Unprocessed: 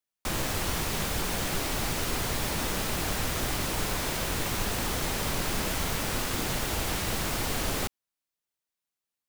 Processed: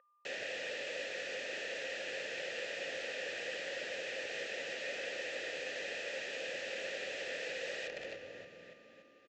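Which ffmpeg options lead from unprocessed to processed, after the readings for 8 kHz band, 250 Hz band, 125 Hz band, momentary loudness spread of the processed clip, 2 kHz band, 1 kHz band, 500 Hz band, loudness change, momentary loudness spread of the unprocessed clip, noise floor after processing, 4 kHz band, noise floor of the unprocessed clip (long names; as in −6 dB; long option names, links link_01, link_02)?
−19.5 dB, −21.0 dB, −32.5 dB, 5 LU, −4.5 dB, −19.0 dB, −4.5 dB, −10.5 dB, 0 LU, −62 dBFS, −10.0 dB, below −85 dBFS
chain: -filter_complex "[0:a]acontrast=38,asplit=2[link_01][link_02];[link_02]asplit=7[link_03][link_04][link_05][link_06][link_07][link_08][link_09];[link_03]adelay=287,afreqshift=-62,volume=-10dB[link_10];[link_04]adelay=574,afreqshift=-124,volume=-14.7dB[link_11];[link_05]adelay=861,afreqshift=-186,volume=-19.5dB[link_12];[link_06]adelay=1148,afreqshift=-248,volume=-24.2dB[link_13];[link_07]adelay=1435,afreqshift=-310,volume=-28.9dB[link_14];[link_08]adelay=1722,afreqshift=-372,volume=-33.7dB[link_15];[link_09]adelay=2009,afreqshift=-434,volume=-38.4dB[link_16];[link_10][link_11][link_12][link_13][link_14][link_15][link_16]amix=inputs=7:normalize=0[link_17];[link_01][link_17]amix=inputs=2:normalize=0,aeval=exprs='0.299*(cos(1*acos(clip(val(0)/0.299,-1,1)))-cos(1*PI/2))+0.0168*(cos(6*acos(clip(val(0)/0.299,-1,1)))-cos(6*PI/2))':channel_layout=same,aresample=16000,aeval=exprs='(mod(16.8*val(0)+1,2)-1)/16.8':channel_layout=same,aresample=44100,aeval=exprs='val(0)+0.00708*sin(2*PI*1200*n/s)':channel_layout=same,asplit=3[link_18][link_19][link_20];[link_18]bandpass=frequency=530:width_type=q:width=8,volume=0dB[link_21];[link_19]bandpass=frequency=1840:width_type=q:width=8,volume=-6dB[link_22];[link_20]bandpass=frequency=2480:width_type=q:width=8,volume=-9dB[link_23];[link_21][link_22][link_23]amix=inputs=3:normalize=0,volume=2.5dB"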